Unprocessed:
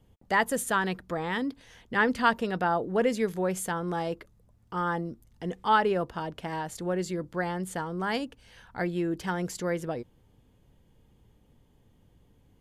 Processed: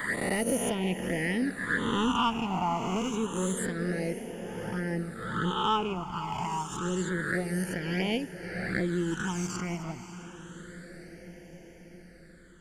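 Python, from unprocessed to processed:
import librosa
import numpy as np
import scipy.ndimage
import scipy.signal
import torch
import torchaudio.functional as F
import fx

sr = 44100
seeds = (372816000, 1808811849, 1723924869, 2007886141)

p1 = fx.spec_swells(x, sr, rise_s=1.64)
p2 = fx.env_flanger(p1, sr, rest_ms=4.8, full_db=-22.5)
p3 = fx.transient(p2, sr, attack_db=3, sustain_db=-9)
p4 = fx.echo_diffused(p3, sr, ms=596, feedback_pct=66, wet_db=-13)
p5 = 10.0 ** (-23.0 / 20.0) * (np.abs((p4 / 10.0 ** (-23.0 / 20.0) + 3.0) % 4.0 - 2.0) - 1.0)
p6 = p4 + F.gain(torch.from_numpy(p5), -11.5).numpy()
y = fx.phaser_stages(p6, sr, stages=8, low_hz=500.0, high_hz=1200.0, hz=0.28, feedback_pct=20)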